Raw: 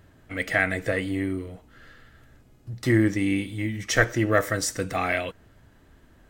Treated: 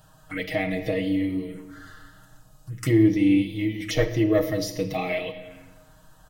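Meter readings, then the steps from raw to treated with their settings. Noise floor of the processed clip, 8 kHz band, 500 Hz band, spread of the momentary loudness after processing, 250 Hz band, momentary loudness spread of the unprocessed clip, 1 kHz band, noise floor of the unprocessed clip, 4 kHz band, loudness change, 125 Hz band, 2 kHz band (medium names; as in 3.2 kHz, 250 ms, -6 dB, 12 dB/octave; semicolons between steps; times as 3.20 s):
-55 dBFS, -7.5 dB, +1.5 dB, 17 LU, +4.0 dB, 12 LU, -5.0 dB, -56 dBFS, 0.0 dB, +1.0 dB, +0.5 dB, -7.5 dB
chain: comb 6.4 ms, depth 95%; touch-sensitive phaser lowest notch 340 Hz, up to 1.5 kHz, full sweep at -24 dBFS; simulated room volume 650 m³, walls mixed, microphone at 0.5 m; tape noise reduction on one side only encoder only; trim -2 dB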